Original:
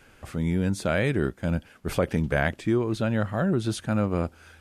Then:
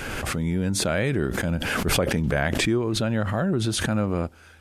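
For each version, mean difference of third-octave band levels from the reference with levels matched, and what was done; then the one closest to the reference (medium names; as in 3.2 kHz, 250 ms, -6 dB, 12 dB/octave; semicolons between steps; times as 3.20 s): 5.5 dB: swell ahead of each attack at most 21 dB/s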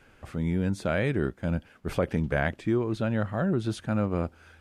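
1.5 dB: treble shelf 4.7 kHz -8 dB; trim -2 dB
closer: second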